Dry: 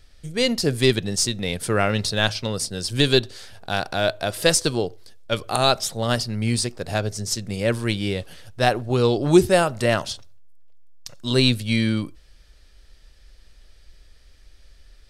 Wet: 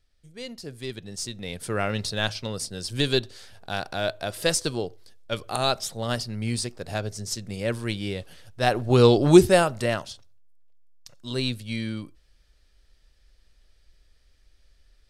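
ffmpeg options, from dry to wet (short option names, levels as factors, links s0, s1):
-af "volume=1.5,afade=t=in:st=0.87:d=1.03:silence=0.266073,afade=t=in:st=8.6:d=0.41:silence=0.354813,afade=t=out:st=9.01:d=1.08:silence=0.223872"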